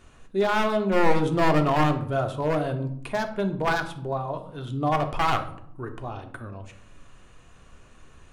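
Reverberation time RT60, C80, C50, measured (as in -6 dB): 0.70 s, 15.0 dB, 11.5 dB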